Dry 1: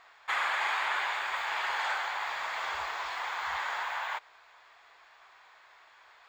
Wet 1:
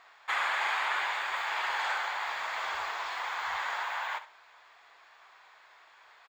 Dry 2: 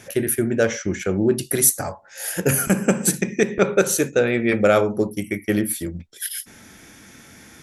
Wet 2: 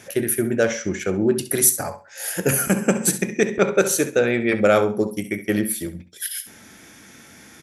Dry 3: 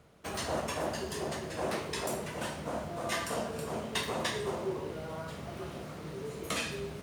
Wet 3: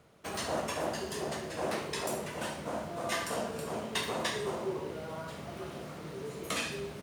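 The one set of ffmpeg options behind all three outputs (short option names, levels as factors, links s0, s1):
-af "lowshelf=f=80:g=-9,aecho=1:1:67|134|201:0.224|0.0493|0.0108"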